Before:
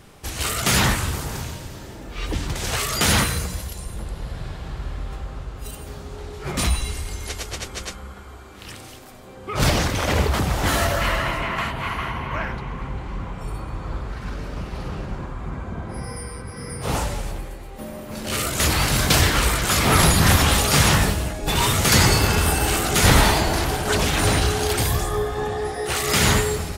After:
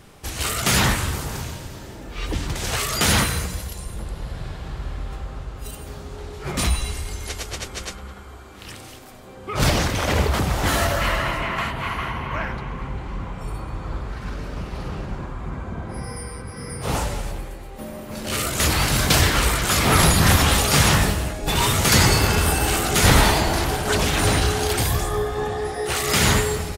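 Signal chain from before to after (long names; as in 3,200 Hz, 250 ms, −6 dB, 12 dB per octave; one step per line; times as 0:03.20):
far-end echo of a speakerphone 210 ms, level −16 dB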